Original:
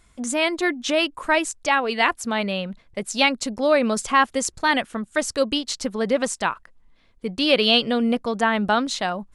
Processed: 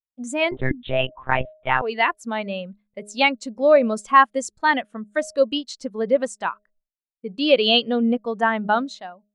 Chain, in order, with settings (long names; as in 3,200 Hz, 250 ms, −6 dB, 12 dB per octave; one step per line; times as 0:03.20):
fade-out on the ending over 0.59 s
noise gate with hold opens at −44 dBFS
low-shelf EQ 160 Hz −7 dB
hum removal 207.3 Hz, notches 3
0:00.51–0:01.82: one-pitch LPC vocoder at 8 kHz 130 Hz
every bin expanded away from the loudest bin 1.5 to 1
level +1 dB